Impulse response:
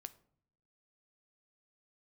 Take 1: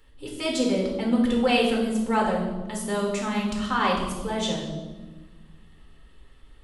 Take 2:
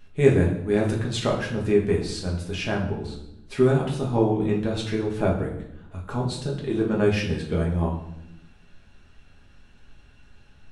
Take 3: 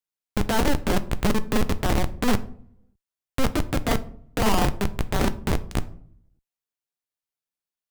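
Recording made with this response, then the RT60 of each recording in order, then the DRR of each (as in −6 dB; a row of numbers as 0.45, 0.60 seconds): 3; 1.3, 0.85, 0.65 seconds; −2.5, −2.5, 11.5 decibels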